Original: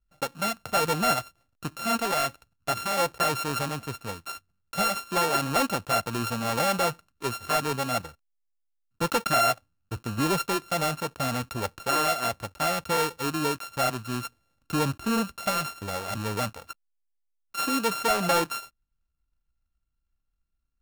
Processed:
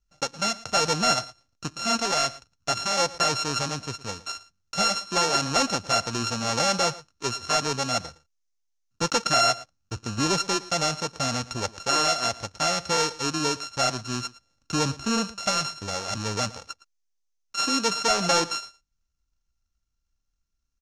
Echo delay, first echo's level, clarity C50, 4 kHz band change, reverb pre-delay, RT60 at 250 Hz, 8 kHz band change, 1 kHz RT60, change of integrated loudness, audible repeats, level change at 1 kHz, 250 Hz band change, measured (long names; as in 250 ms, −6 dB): 113 ms, −19.0 dB, no reverb audible, +7.0 dB, no reverb audible, no reverb audible, +6.0 dB, no reverb audible, +2.5 dB, 1, +0.5 dB, 0.0 dB